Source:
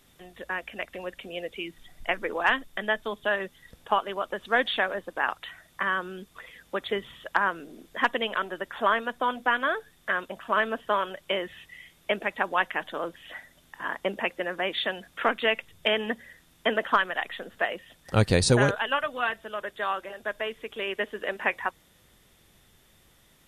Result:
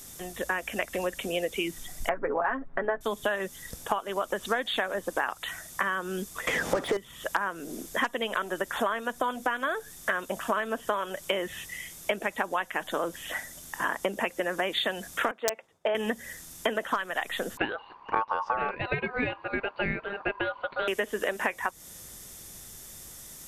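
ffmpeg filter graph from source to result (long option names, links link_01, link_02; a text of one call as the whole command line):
ffmpeg -i in.wav -filter_complex "[0:a]asettb=1/sr,asplit=3[link_01][link_02][link_03];[link_01]atrim=end=2.094[link_04];[link_02]atrim=start=2.09:end=3.01,asetpts=PTS-STARTPTS,afade=type=in:duration=0.004:curve=qsin,afade=type=out:start_time=0.916:duration=0.004:curve=qsin,lowpass=frequency=1600:width=0.5412,lowpass=frequency=1600:width=1.3066,aecho=1:1:7.3:0.73,atrim=end_sample=40572[link_05];[link_03]atrim=start=3.006[link_06];[link_04][link_05]acrossfade=duration=0.004:curve1=hsin:curve2=qsin[link_07];[link_07][link_06]acrossfade=duration=0.004:curve1=qsin:curve2=hsin,asettb=1/sr,asplit=3[link_08][link_09][link_10];[link_08]atrim=end=6.474[link_11];[link_09]atrim=start=6.47:end=6.97,asetpts=PTS-STARTPTS,afade=type=in:duration=0.004:curve=qsin,afade=type=out:start_time=0.496:duration=0.004:curve=qsin,asplit=2[link_12][link_13];[link_13]highpass=frequency=720:poles=1,volume=30dB,asoftclip=type=tanh:threshold=-16dB[link_14];[link_12][link_14]amix=inputs=2:normalize=0,lowpass=frequency=2600:poles=1,volume=-6dB,tiltshelf=frequency=1500:gain=8.5[link_15];[link_10]atrim=start=6.966[link_16];[link_11][link_15]acrossfade=duration=0.004:curve1=hsin:curve2=qsin[link_17];[link_17][link_16]acrossfade=duration=0.004:curve1=qsin:curve2=hsin,asettb=1/sr,asplit=3[link_18][link_19][link_20];[link_18]atrim=end=15.314[link_21];[link_19]atrim=start=15.31:end=15.95,asetpts=PTS-STARTPTS,afade=type=in:duration=0.004:curve=qsin,afade=type=out:start_time=0.636:duration=0.004:curve=qsin,agate=range=-33dB:threshold=-49dB:ratio=3:release=100:detection=peak,bandpass=frequency=690:width_type=q:width=1.2,aeval=exprs='(mod(7.94*val(0)+1,2)-1)/7.94':channel_layout=same[link_22];[link_20]atrim=start=15.946[link_23];[link_21][link_22]acrossfade=duration=0.004:curve1=hsin:curve2=qsin[link_24];[link_24][link_23]acrossfade=duration=0.004:curve1=qsin:curve2=hsin,asettb=1/sr,asplit=3[link_25][link_26][link_27];[link_25]atrim=end=17.574[link_28];[link_26]atrim=start=17.57:end=20.88,asetpts=PTS-STARTPTS,afade=type=in:duration=0.004:curve=qsin,afade=type=out:start_time=3.306:duration=0.004:curve=qsin,lowpass=frequency=1900:width=0.5412,lowpass=frequency=1900:width=1.3066,lowshelf=frequency=140:gain=10,aeval=exprs='val(0)*sin(2*PI*1000*n/s)':channel_layout=same[link_29];[link_27]atrim=start=20.876[link_30];[link_28][link_29]acrossfade=duration=0.004:curve1=hsin:curve2=qsin[link_31];[link_31][link_30]acrossfade=duration=0.004:curve1=qsin:curve2=hsin,highshelf=frequency=4500:width_type=q:width=1.5:gain=10.5,acompressor=threshold=-33dB:ratio=12,volume=8.5dB" out.wav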